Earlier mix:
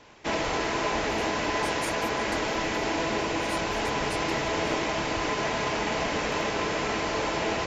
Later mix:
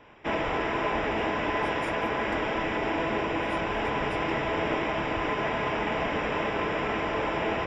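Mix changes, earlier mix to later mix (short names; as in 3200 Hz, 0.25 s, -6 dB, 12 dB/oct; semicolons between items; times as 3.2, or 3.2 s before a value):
speech +3.5 dB; master: add polynomial smoothing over 25 samples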